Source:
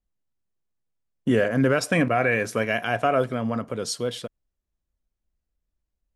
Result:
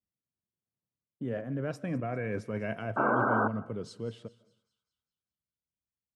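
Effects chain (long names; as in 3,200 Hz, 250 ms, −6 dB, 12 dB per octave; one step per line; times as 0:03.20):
source passing by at 0:01.96, 17 m/s, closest 7.6 metres
high-pass filter 100 Hz 24 dB per octave
spectral tilt −3.5 dB per octave
reversed playback
downward compressor 16 to 1, threshold −30 dBFS, peak gain reduction 20 dB
reversed playback
sound drawn into the spectrogram noise, 0:02.96–0:03.48, 200–1,600 Hz −27 dBFS
delay with a high-pass on its return 200 ms, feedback 49%, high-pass 3,000 Hz, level −17 dB
on a send at −21.5 dB: convolution reverb RT60 0.50 s, pre-delay 110 ms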